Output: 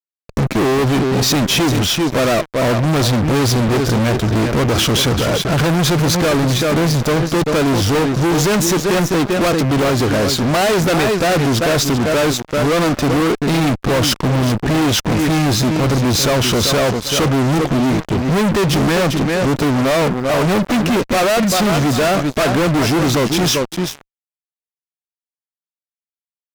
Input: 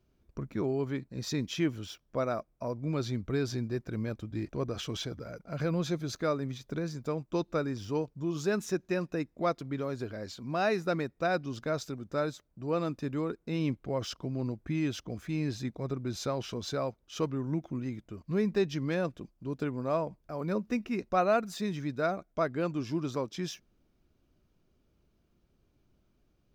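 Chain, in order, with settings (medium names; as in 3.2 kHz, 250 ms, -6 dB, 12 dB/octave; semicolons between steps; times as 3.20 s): feedback delay 392 ms, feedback 15%, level -12.5 dB; fuzz box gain 49 dB, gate -52 dBFS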